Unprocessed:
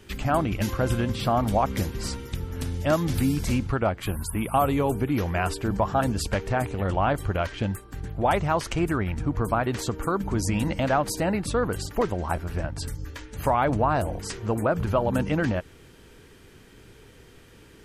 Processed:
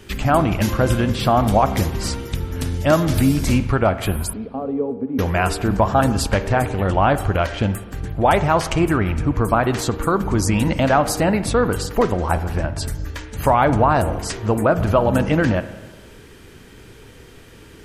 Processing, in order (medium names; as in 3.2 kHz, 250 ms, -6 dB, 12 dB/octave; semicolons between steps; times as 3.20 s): 4.33–5.19 s: two resonant band-passes 340 Hz, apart 0.77 oct; spring tank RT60 1.3 s, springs 37/49 ms, chirp 55 ms, DRR 12 dB; trim +7 dB